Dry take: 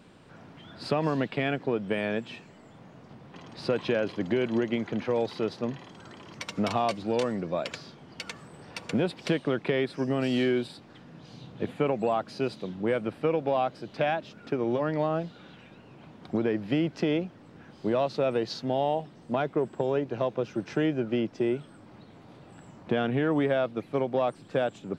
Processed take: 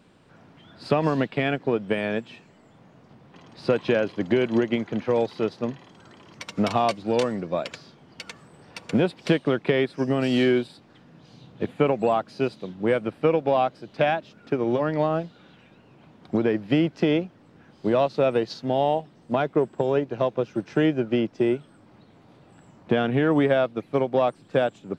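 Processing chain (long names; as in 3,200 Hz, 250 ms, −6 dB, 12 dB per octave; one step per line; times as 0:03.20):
expander for the loud parts 1.5 to 1, over −40 dBFS
level +6.5 dB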